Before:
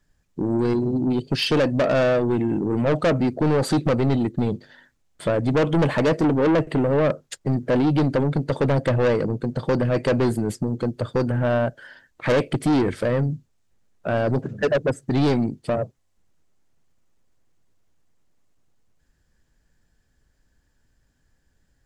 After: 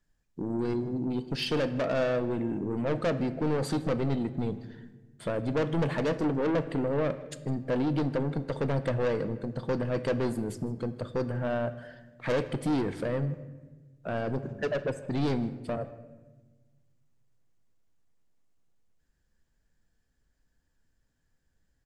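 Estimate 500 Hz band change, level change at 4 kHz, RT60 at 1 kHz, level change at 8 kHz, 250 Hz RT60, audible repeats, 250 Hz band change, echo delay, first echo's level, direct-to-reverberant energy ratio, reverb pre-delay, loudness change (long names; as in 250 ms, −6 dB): −8.5 dB, −8.5 dB, 1.0 s, −8.5 dB, 1.8 s, 1, −8.5 dB, 158 ms, −21.5 dB, 10.5 dB, 4 ms, −8.5 dB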